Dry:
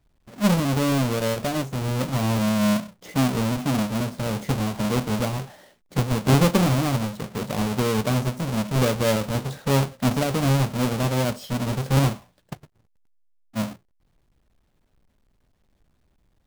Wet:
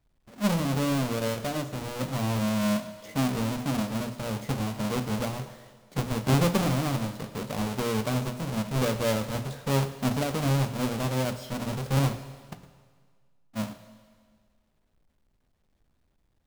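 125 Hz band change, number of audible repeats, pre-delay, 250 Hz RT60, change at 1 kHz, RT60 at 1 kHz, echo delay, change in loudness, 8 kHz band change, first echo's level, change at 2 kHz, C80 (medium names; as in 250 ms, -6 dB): -5.5 dB, no echo, 22 ms, 1.8 s, -4.5 dB, 1.8 s, no echo, -5.0 dB, -4.5 dB, no echo, -4.5 dB, 13.5 dB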